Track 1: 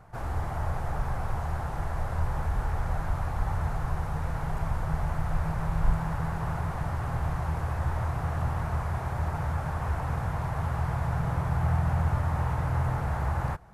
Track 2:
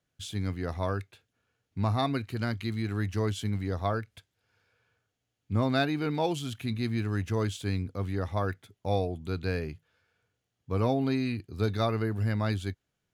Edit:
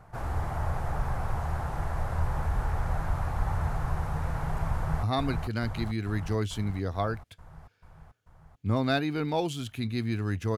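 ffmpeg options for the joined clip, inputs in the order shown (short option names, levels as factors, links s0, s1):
-filter_complex "[0:a]apad=whole_dur=10.57,atrim=end=10.57,atrim=end=5.032[s0];[1:a]atrim=start=1.888:end=7.43[s1];[s0][s1]acrossfade=d=0.004:c1=hsin:c2=hsin,asplit=2[s2][s3];[s3]afade=t=in:st=4.74:d=0.01,afade=t=out:st=5.03:d=0.01,aecho=0:1:440|880|1320|1760|2200|2640|3080|3520|3960|4400|4840|5280:0.630957|0.44167|0.309169|0.216418|0.151493|0.106045|0.0742315|0.0519621|0.0363734|0.0254614|0.017823|0.0124761[s4];[s2][s4]amix=inputs=2:normalize=0"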